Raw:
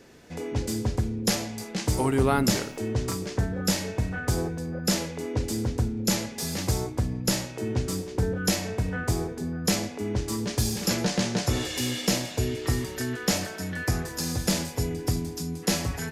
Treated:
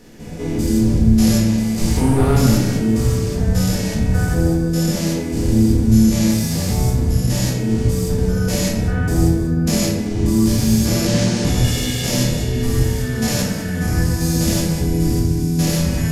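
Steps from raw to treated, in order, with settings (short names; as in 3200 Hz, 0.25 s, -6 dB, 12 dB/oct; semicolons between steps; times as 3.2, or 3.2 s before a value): stepped spectrum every 0.2 s; low shelf 230 Hz +10 dB; in parallel at -6 dB: sine folder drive 5 dB, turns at -8.5 dBFS; on the sum: high shelf 6400 Hz +8.5 dB; shoebox room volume 310 m³, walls mixed, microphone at 1.8 m; gain -6.5 dB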